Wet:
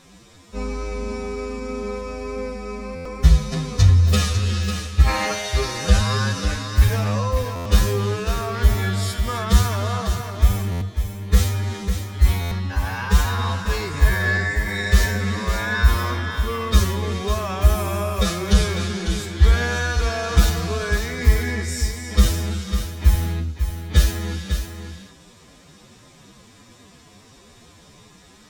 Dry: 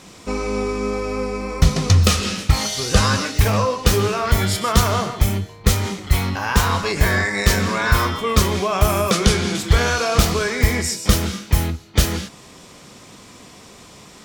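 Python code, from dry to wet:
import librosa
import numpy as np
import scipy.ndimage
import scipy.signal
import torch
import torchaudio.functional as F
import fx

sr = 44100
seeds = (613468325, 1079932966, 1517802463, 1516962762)

p1 = fx.spec_box(x, sr, start_s=2.54, length_s=0.28, low_hz=290.0, high_hz=2900.0, gain_db=11)
p2 = fx.stretch_vocoder(p1, sr, factor=2.0)
p3 = fx.low_shelf(p2, sr, hz=110.0, db=10.5)
p4 = fx.small_body(p3, sr, hz=(1700.0, 3700.0), ring_ms=45, db=10)
p5 = p4 + fx.echo_single(p4, sr, ms=548, db=-8.0, dry=0)
p6 = fx.buffer_glitch(p5, sr, at_s=(2.95, 7.55, 10.71, 12.41), block=512, repeats=8)
y = F.gain(torch.from_numpy(p6), -7.0).numpy()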